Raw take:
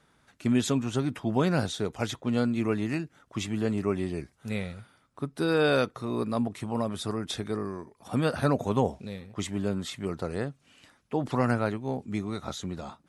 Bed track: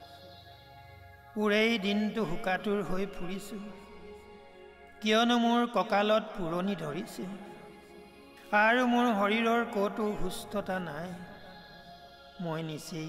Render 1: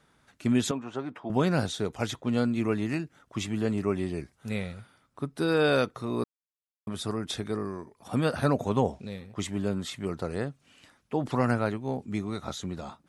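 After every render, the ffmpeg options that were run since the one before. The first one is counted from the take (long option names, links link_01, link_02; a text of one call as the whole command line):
ffmpeg -i in.wav -filter_complex "[0:a]asettb=1/sr,asplit=3[link_01][link_02][link_03];[link_01]atrim=end=0.714[link_04];[link_02]atrim=start=0.71:end=1.3,asetpts=PTS-STARTPTS,afade=type=in:duration=0.004:curve=qsin,afade=type=out:start_time=0.586:duration=0.004:curve=qsin,bandpass=frequency=840:width_type=q:width=0.74[link_05];[link_03]atrim=start=1.296[link_06];[link_04][link_05]acrossfade=duration=0.004:curve1=hsin:curve2=qsin[link_07];[link_07][link_06]acrossfade=duration=0.004:curve1=qsin:curve2=hsin,asettb=1/sr,asplit=3[link_08][link_09][link_10];[link_08]atrim=end=8.644[link_11];[link_09]atrim=start=8.64:end=9.12,asetpts=PTS-STARTPTS,afade=type=in:duration=0.004:curve=qsin,afade=type=out:start_time=0.476:duration=0.004:curve=qsin,lowpass=9700[link_12];[link_10]atrim=start=9.116[link_13];[link_11][link_12]acrossfade=duration=0.004:curve1=hsin:curve2=qsin[link_14];[link_14][link_13]acrossfade=duration=0.004:curve1=qsin:curve2=hsin,asplit=3[link_15][link_16][link_17];[link_15]atrim=end=6.24,asetpts=PTS-STARTPTS,afade=type=out:start_time=6.236:duration=0.004:curve=hsin[link_18];[link_16]atrim=start=6.24:end=6.87,asetpts=PTS-STARTPTS,volume=0[link_19];[link_17]atrim=start=6.87,asetpts=PTS-STARTPTS,afade=type=in:duration=0.004:curve=hsin[link_20];[link_18][link_19][link_20]concat=n=3:v=0:a=1" out.wav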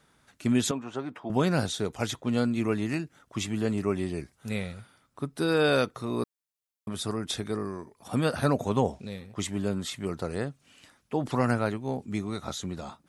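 ffmpeg -i in.wav -af "highshelf=frequency=5000:gain=5" out.wav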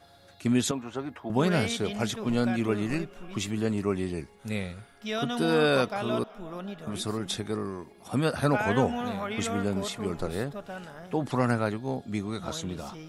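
ffmpeg -i in.wav -i bed.wav -filter_complex "[1:a]volume=-6dB[link_01];[0:a][link_01]amix=inputs=2:normalize=0" out.wav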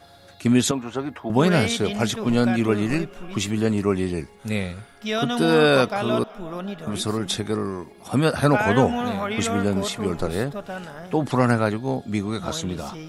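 ffmpeg -i in.wav -af "volume=6.5dB" out.wav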